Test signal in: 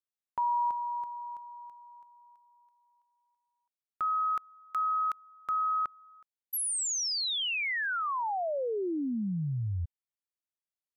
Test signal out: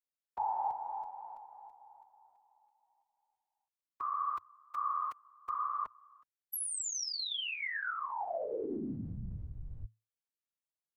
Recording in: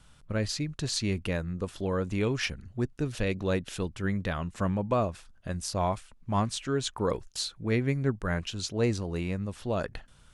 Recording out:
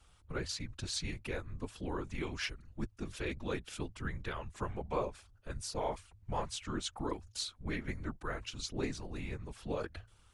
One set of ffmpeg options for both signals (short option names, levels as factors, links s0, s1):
-filter_complex "[0:a]acrossover=split=460[s0][s1];[s0]acompressor=threshold=0.02:ratio=6:attack=53:release=578:knee=2.83:detection=peak[s2];[s2][s1]amix=inputs=2:normalize=0,afftfilt=real='hypot(re,im)*cos(2*PI*random(0))':imag='hypot(re,im)*sin(2*PI*random(1))':win_size=512:overlap=0.75,afreqshift=-110"